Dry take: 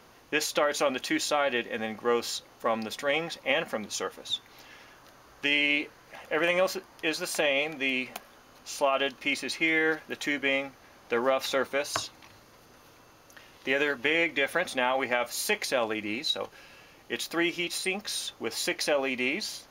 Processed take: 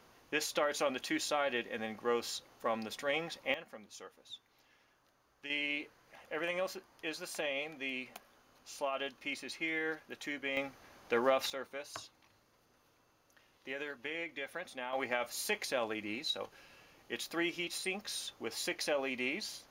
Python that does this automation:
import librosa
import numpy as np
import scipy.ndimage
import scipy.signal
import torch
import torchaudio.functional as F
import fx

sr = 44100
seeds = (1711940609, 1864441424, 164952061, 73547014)

y = fx.gain(x, sr, db=fx.steps((0.0, -7.0), (3.54, -18.0), (5.5, -11.0), (10.57, -4.0), (11.5, -15.0), (14.93, -7.5)))